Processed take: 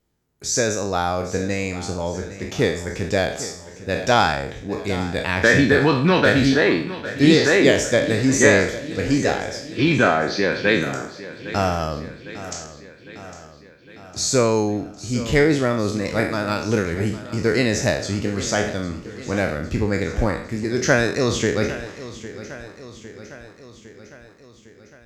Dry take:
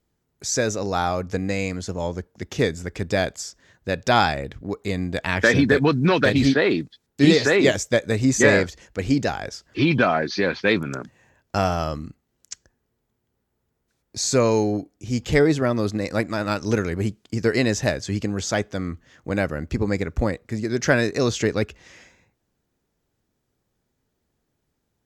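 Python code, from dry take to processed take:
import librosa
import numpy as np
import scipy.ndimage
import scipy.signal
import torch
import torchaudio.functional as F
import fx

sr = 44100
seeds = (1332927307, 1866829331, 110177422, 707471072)

p1 = fx.spec_trails(x, sr, decay_s=0.54)
y = p1 + fx.echo_feedback(p1, sr, ms=806, feedback_pct=60, wet_db=-15, dry=0)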